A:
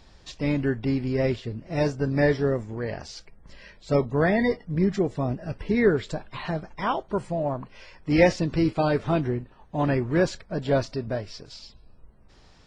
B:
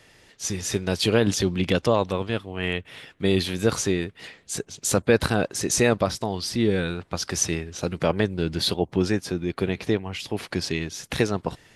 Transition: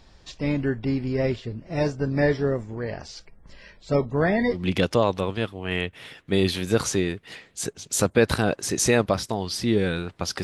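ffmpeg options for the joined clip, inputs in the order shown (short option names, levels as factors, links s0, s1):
-filter_complex "[0:a]apad=whole_dur=10.43,atrim=end=10.43,atrim=end=4.64,asetpts=PTS-STARTPTS[s0];[1:a]atrim=start=1.42:end=7.35,asetpts=PTS-STARTPTS[s1];[s0][s1]acrossfade=d=0.14:c1=tri:c2=tri"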